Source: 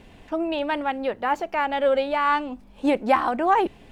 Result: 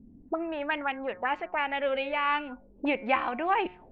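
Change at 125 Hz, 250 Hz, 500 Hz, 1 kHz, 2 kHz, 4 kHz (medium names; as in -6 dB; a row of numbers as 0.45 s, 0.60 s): no reading, -7.5 dB, -8.0 dB, -6.5 dB, -1.5 dB, -3.0 dB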